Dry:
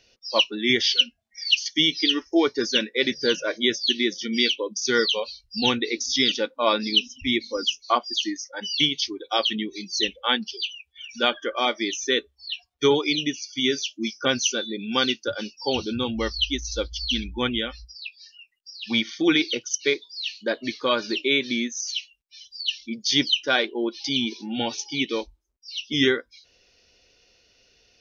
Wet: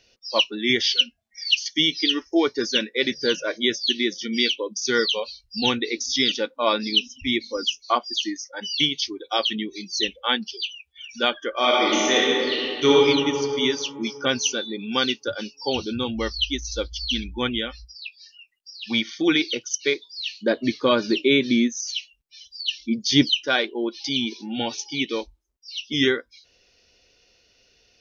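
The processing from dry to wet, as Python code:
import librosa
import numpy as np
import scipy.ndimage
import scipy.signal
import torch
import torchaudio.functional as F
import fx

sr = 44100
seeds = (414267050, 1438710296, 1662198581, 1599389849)

y = fx.reverb_throw(x, sr, start_s=11.51, length_s=1.43, rt60_s=2.8, drr_db=-5.5)
y = fx.low_shelf(y, sr, hz=450.0, db=10.5, at=(20.18, 23.42))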